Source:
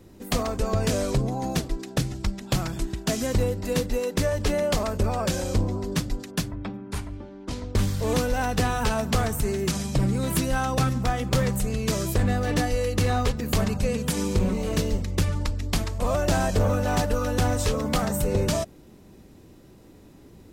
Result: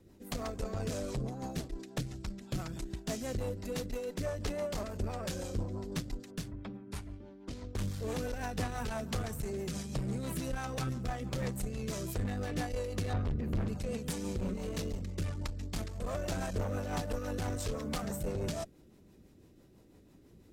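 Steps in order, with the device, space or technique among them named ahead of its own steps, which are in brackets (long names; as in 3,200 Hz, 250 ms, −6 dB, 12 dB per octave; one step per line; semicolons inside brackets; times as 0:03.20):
0:13.13–0:13.68: bass and treble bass +11 dB, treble −14 dB
overdriven rotary cabinet (tube saturation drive 21 dB, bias 0.45; rotating-speaker cabinet horn 6 Hz)
level −6.5 dB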